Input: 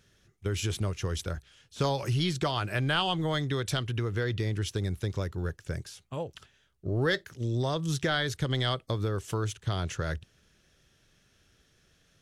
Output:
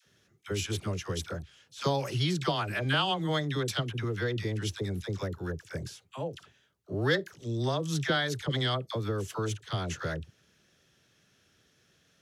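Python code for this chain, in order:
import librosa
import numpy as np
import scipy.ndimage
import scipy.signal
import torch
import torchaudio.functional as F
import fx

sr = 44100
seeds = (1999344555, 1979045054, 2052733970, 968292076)

y = scipy.signal.sosfilt(scipy.signal.butter(2, 110.0, 'highpass', fs=sr, output='sos'), x)
y = fx.peak_eq(y, sr, hz=9100.0, db=-4.0, octaves=0.23)
y = fx.dispersion(y, sr, late='lows', ms=62.0, hz=710.0)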